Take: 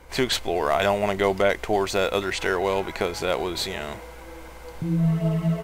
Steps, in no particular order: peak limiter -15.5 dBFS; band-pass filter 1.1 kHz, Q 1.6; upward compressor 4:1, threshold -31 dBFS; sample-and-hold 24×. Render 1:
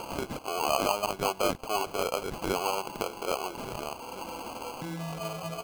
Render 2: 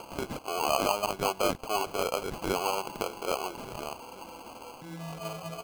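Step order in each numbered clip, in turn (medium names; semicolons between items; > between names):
band-pass filter > upward compressor > sample-and-hold > peak limiter; upward compressor > band-pass filter > sample-and-hold > peak limiter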